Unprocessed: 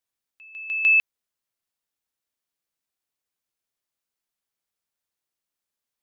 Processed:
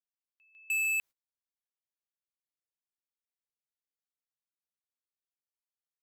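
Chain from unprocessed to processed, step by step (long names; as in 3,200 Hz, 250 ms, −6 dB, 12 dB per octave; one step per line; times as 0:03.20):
noise gate −33 dBFS, range −25 dB
brickwall limiter −24 dBFS, peak gain reduction 11 dB
gain into a clipping stage and back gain 34 dB
level +5.5 dB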